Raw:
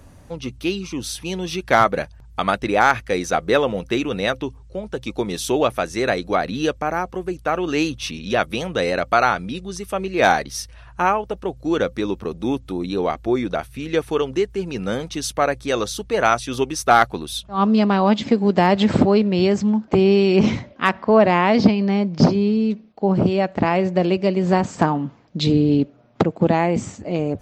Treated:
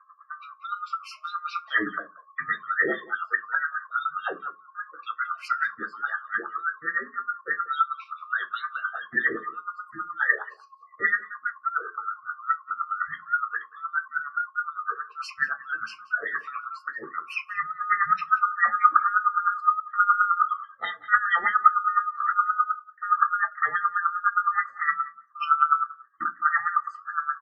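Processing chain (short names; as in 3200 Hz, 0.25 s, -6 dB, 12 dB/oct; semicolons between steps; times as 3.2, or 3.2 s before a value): band-swap scrambler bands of 1000 Hz; spectral gate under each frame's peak -15 dB strong; bell 280 Hz -15 dB 2.2 oct; 16.17–17.87 negative-ratio compressor -23 dBFS, ratio -0.5; LFO band-pass sine 4.8 Hz 300–4600 Hz; echo 0.182 s -21 dB; reverb RT60 0.20 s, pre-delay 3 ms, DRR 0 dB; gain -8.5 dB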